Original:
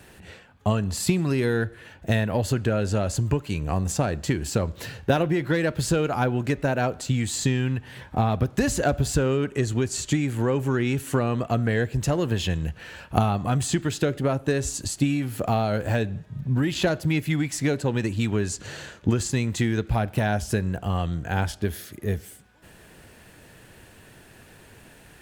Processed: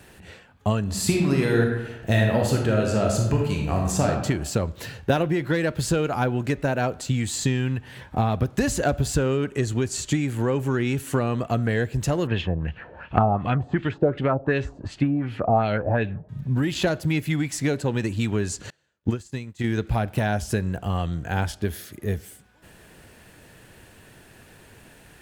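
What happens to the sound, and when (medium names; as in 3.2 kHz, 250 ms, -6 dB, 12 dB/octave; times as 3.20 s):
0.83–4.08 s: reverb throw, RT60 0.99 s, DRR 0 dB
12.27–16.29 s: LFO low-pass sine 2.7 Hz 620–3100 Hz
18.70–19.64 s: upward expansion 2.5:1, over -39 dBFS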